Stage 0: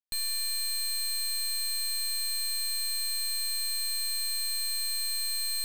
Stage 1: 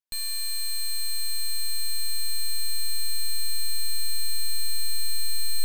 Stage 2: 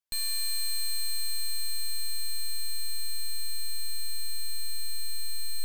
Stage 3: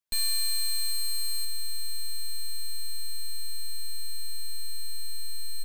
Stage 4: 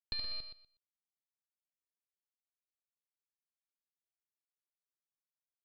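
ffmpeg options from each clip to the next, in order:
-af "asubboost=boost=10:cutoff=52"
-af "acompressor=threshold=-24dB:ratio=6"
-filter_complex "[0:a]aecho=1:1:71:0.316,asplit=2[a][b];[b]acrusher=bits=4:mix=0:aa=0.000001,volume=-8dB[c];[a][c]amix=inputs=2:normalize=0,alimiter=limit=-22.5dB:level=0:latency=1"
-filter_complex "[0:a]acrusher=bits=4:dc=4:mix=0:aa=0.000001,asplit=2[a][b];[b]aecho=0:1:122|244|366:0.355|0.0639|0.0115[c];[a][c]amix=inputs=2:normalize=0,aresample=11025,aresample=44100,volume=6.5dB"

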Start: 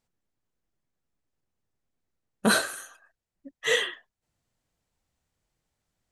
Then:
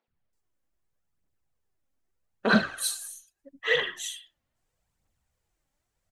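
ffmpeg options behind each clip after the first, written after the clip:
-filter_complex "[0:a]acrossover=split=280|4100[a][b][c];[a]adelay=80[d];[c]adelay=330[e];[d][b][e]amix=inputs=3:normalize=0,aphaser=in_gain=1:out_gain=1:delay=3.8:decay=0.45:speed=0.79:type=triangular"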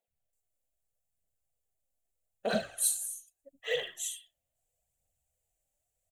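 -af "firequalizer=gain_entry='entry(110,0);entry(180,-5);entry(340,-8);entry(490,3);entry(690,7);entry(1000,-12);entry(1800,-6);entry(2700,1);entry(5100,-3);entry(7200,10)':delay=0.05:min_phase=1,volume=-7dB"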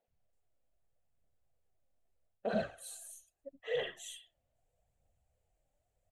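-af "areverse,acompressor=threshold=-38dB:ratio=5,areverse,lowpass=f=1.1k:p=1,volume=8dB"

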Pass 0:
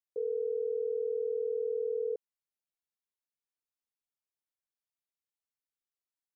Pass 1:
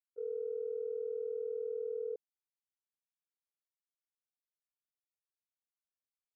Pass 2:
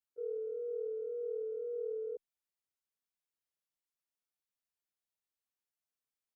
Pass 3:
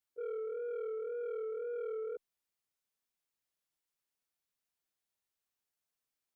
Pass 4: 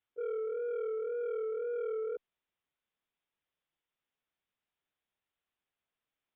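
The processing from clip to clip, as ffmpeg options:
-af "agate=range=-33dB:threshold=-27dB:ratio=3:detection=peak"
-filter_complex "[0:a]asplit=2[a][b];[b]adelay=9.6,afreqshift=-1.9[c];[a][c]amix=inputs=2:normalize=1,volume=2.5dB"
-af "asoftclip=type=tanh:threshold=-38dB,volume=3dB"
-af "aresample=8000,aresample=44100,volume=3.5dB"

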